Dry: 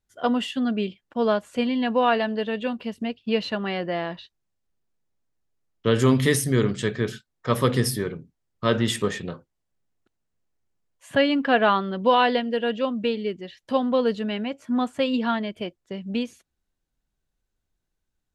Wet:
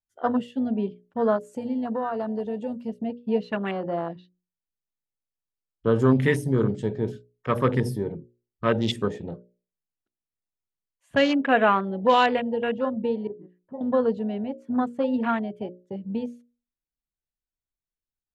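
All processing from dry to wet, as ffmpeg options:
-filter_complex "[0:a]asettb=1/sr,asplit=3[a][b][c];[a]atrim=end=1.364[d];[b]atrim=start=1.36:end=2.88,asetpts=PTS-STARTPTS,afade=t=in:d=0.004:c=qsin,afade=t=out:st=1.516:d=0.004:c=qsin,highshelf=f=4.9k:t=q:w=1.5:g=10.5,acompressor=threshold=-24dB:ratio=4:attack=3.2:release=140:knee=1:detection=peak[e];[c]atrim=start=2.876[f];[d][e]acrossfade=d=0.004:c1=hsin:c2=qsin[g];[g][f]acrossfade=d=0.004:c1=qsin:c2=hsin,asettb=1/sr,asplit=3[h][i][j];[h]atrim=end=13.274[k];[i]atrim=start=13.27:end=13.81,asetpts=PTS-STARTPTS,afade=t=in:d=0.004:c=qsin,afade=t=out:st=0.536:d=0.004:c=qsin,lowpass=f=1.4k:w=0.5412,lowpass=f=1.4k:w=1.3066,acompressor=threshold=-40dB:ratio=2:attack=3.2:release=140:knee=1:detection=peak[l];[j]atrim=start=13.806[m];[k][l]acrossfade=d=0.004:c1=hsin:c2=qsin[n];[n][m]acrossfade=d=0.004:c1=qsin:c2=hsin,afwtdn=0.0316,bandreject=f=60:t=h:w=6,bandreject=f=120:t=h:w=6,bandreject=f=180:t=h:w=6,bandreject=f=240:t=h:w=6,bandreject=f=300:t=h:w=6,bandreject=f=360:t=h:w=6,bandreject=f=420:t=h:w=6,bandreject=f=480:t=h:w=6,bandreject=f=540:t=h:w=6,bandreject=f=600:t=h:w=6"

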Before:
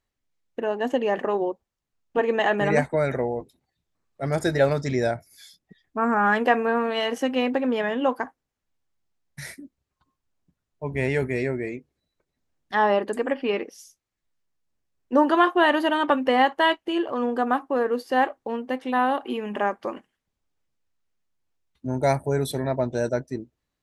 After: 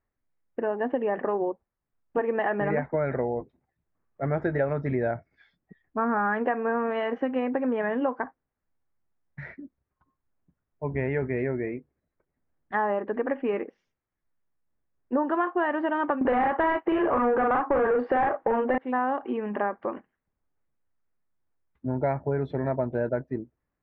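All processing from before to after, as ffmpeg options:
-filter_complex "[0:a]asettb=1/sr,asplit=3[a][b][c];[a]atrim=end=16.214[d];[b]atrim=start=16.21:end=18.78,asetpts=PTS-STARTPTS,afade=t=in:d=0.004:c=qsin,afade=t=out:st=2.566:d=0.004:c=qsin,asplit=2[e][f];[f]adelay=40,volume=-2.5dB[g];[e][g]amix=inputs=2:normalize=0,atrim=end_sample=113337,asplit=2[h][i];[i]highpass=f=720:p=1,volume=27dB,asoftclip=type=tanh:threshold=-5dB[j];[h][j]amix=inputs=2:normalize=0,lowpass=f=1.4k:p=1,volume=-6dB[k];[c]atrim=start=18.776[l];[d][k]acrossfade=d=0.004:c1=hsin:c2=qsin[m];[m][l]acrossfade=d=0.004:c1=qsin:c2=hsin,acompressor=threshold=-22dB:ratio=6,lowpass=f=2k:w=0.5412,lowpass=f=2k:w=1.3066"

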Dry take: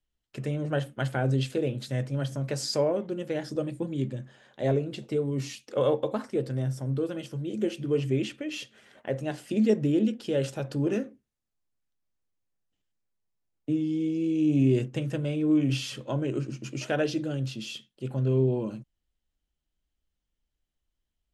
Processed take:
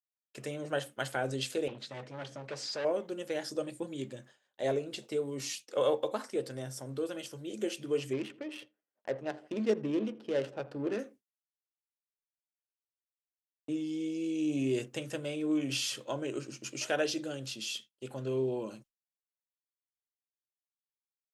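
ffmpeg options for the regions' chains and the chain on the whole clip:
-filter_complex "[0:a]asettb=1/sr,asplit=3[a][b][c];[a]atrim=end=1.684[d];[b]atrim=start=1.68:end=2.85,asetpts=PTS-STARTPTS,afade=t=in:d=0.004:c=qsin,afade=t=out:st=1.166:d=0.004:c=qsin,asoftclip=type=hard:threshold=-30dB,highpass=100,lowpass=3.5k[e];[c]atrim=start=2.846[f];[d][e]acrossfade=d=0.004:c1=hsin:c2=qsin[g];[g][f]acrossfade=d=0.004:c1=qsin:c2=hsin,asettb=1/sr,asplit=3[h][i][j];[h]atrim=end=8.134[k];[i]atrim=start=8.13:end=10.99,asetpts=PTS-STARTPTS,afade=t=in:d=0.004:c=qsin,afade=t=out:st=2.856:d=0.004:c=qsin,bandreject=f=6.9k:w=19,adynamicsmooth=sensitivity=3.5:basefreq=970,asplit=2[l][m];[m]adelay=82,lowpass=f=1.6k:p=1,volume=-18dB,asplit=2[n][o];[o]adelay=82,lowpass=f=1.6k:p=1,volume=0.54,asplit=2[p][q];[q]adelay=82,lowpass=f=1.6k:p=1,volume=0.54,asplit=2[r][s];[s]adelay=82,lowpass=f=1.6k:p=1,volume=0.54,asplit=2[t][u];[u]adelay=82,lowpass=f=1.6k:p=1,volume=0.54[v];[l][n][p][r][t][v]amix=inputs=6:normalize=0,atrim=end_sample=126126[w];[j]atrim=start=10.986[x];[k][w]acrossfade=d=0.004:c1=hsin:c2=qsin[y];[y][x]acrossfade=d=0.004:c1=qsin:c2=hsin,lowshelf=f=290:g=-5.5,agate=range=-33dB:threshold=-45dB:ratio=3:detection=peak,bass=f=250:g=-10,treble=f=4k:g=7,volume=-1.5dB"

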